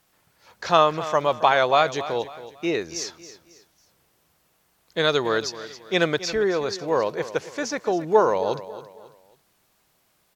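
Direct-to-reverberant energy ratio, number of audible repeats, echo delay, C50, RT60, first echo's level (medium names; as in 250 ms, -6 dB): no reverb, 3, 273 ms, no reverb, no reverb, -14.5 dB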